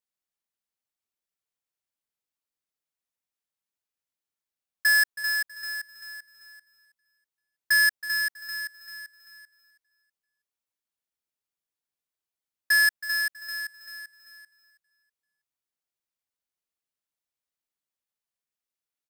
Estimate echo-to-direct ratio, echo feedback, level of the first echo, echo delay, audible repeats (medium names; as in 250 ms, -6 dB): -14.0 dB, 30%, -14.5 dB, 323 ms, 2